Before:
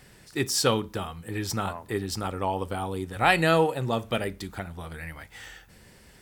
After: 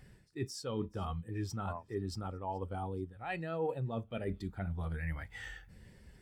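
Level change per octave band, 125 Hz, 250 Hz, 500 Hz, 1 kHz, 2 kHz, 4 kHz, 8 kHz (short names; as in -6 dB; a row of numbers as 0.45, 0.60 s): -6.0, -9.5, -12.0, -14.0, -16.0, -18.5, -19.0 dB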